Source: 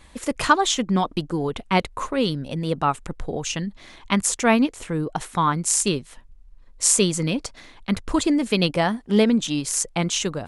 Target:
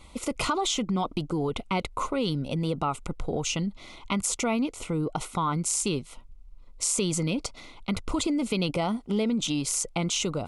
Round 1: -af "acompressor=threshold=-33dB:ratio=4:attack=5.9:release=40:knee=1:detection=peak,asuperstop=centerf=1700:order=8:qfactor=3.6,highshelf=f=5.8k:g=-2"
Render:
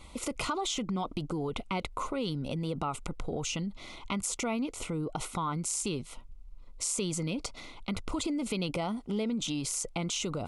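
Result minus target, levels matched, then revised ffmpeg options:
compressor: peak gain reduction +5.5 dB
-af "acompressor=threshold=-25.5dB:ratio=4:attack=5.9:release=40:knee=1:detection=peak,asuperstop=centerf=1700:order=8:qfactor=3.6,highshelf=f=5.8k:g=-2"

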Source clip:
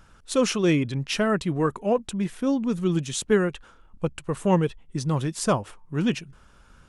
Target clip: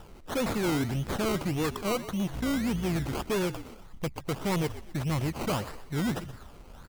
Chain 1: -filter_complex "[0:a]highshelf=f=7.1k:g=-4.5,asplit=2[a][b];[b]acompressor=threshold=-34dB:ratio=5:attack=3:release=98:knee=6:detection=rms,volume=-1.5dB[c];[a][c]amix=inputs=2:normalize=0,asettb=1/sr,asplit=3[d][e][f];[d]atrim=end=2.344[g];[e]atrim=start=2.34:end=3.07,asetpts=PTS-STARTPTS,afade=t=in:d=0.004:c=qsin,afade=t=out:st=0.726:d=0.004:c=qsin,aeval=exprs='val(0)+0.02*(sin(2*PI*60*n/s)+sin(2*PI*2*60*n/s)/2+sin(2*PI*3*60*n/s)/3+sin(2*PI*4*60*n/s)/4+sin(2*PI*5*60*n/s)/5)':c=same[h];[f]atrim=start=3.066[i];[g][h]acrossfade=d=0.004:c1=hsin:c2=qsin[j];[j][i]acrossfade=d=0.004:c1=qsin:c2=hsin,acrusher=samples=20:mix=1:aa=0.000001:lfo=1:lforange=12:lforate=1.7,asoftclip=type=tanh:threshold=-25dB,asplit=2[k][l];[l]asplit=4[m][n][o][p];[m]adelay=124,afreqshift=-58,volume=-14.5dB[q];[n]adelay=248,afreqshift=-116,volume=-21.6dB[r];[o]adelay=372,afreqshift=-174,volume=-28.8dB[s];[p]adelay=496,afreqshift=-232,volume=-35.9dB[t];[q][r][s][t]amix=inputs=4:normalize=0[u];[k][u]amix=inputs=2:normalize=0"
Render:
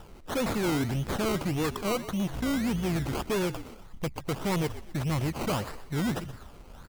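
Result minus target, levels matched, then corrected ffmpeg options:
compressor: peak gain reduction -9.5 dB
-filter_complex "[0:a]highshelf=f=7.1k:g=-4.5,asplit=2[a][b];[b]acompressor=threshold=-46dB:ratio=5:attack=3:release=98:knee=6:detection=rms,volume=-1.5dB[c];[a][c]amix=inputs=2:normalize=0,asettb=1/sr,asplit=3[d][e][f];[d]atrim=end=2.344[g];[e]atrim=start=2.34:end=3.07,asetpts=PTS-STARTPTS,afade=t=in:d=0.004:c=qsin,afade=t=out:st=0.726:d=0.004:c=qsin,aeval=exprs='val(0)+0.02*(sin(2*PI*60*n/s)+sin(2*PI*2*60*n/s)/2+sin(2*PI*3*60*n/s)/3+sin(2*PI*4*60*n/s)/4+sin(2*PI*5*60*n/s)/5)':c=same[h];[f]atrim=start=3.066[i];[g][h]acrossfade=d=0.004:c1=hsin:c2=qsin[j];[j][i]acrossfade=d=0.004:c1=qsin:c2=hsin,acrusher=samples=20:mix=1:aa=0.000001:lfo=1:lforange=12:lforate=1.7,asoftclip=type=tanh:threshold=-25dB,asplit=2[k][l];[l]asplit=4[m][n][o][p];[m]adelay=124,afreqshift=-58,volume=-14.5dB[q];[n]adelay=248,afreqshift=-116,volume=-21.6dB[r];[o]adelay=372,afreqshift=-174,volume=-28.8dB[s];[p]adelay=496,afreqshift=-232,volume=-35.9dB[t];[q][r][s][t]amix=inputs=4:normalize=0[u];[k][u]amix=inputs=2:normalize=0"

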